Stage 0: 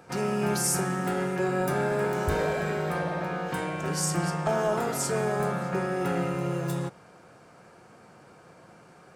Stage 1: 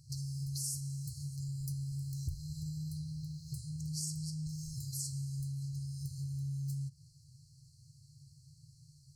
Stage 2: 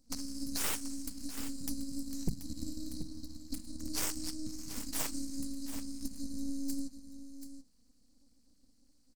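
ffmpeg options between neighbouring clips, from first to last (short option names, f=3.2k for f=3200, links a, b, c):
-af "afftfilt=real='re*(1-between(b*sr/4096,160,4000))':imag='im*(1-between(b*sr/4096,160,4000))':win_size=4096:overlap=0.75,highshelf=f=3.7k:g=-6,acompressor=threshold=-43dB:ratio=3,volume=4.5dB"
-af "aeval=exprs='abs(val(0))':c=same,aeval=exprs='0.0531*(cos(1*acos(clip(val(0)/0.0531,-1,1)))-cos(1*PI/2))+0.00596*(cos(7*acos(clip(val(0)/0.0531,-1,1)))-cos(7*PI/2))+0.000944*(cos(8*acos(clip(val(0)/0.0531,-1,1)))-cos(8*PI/2))':c=same,aecho=1:1:732:0.282,volume=6.5dB"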